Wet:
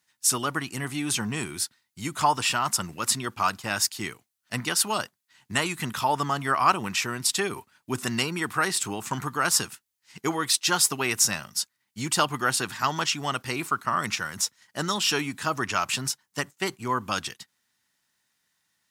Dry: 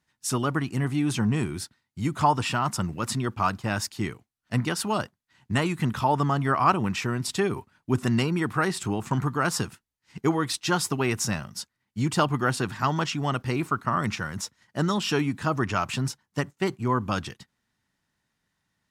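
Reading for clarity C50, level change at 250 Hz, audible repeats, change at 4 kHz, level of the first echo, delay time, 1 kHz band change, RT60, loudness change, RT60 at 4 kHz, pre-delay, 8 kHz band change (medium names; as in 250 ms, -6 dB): no reverb, -6.0 dB, no echo, +6.0 dB, no echo, no echo, 0.0 dB, no reverb, +0.5 dB, no reverb, no reverb, +9.0 dB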